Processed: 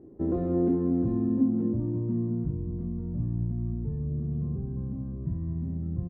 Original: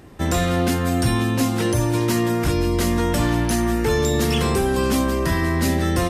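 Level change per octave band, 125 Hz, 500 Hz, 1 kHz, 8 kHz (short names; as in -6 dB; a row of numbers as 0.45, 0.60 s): -7.5 dB, -13.0 dB, under -20 dB, under -40 dB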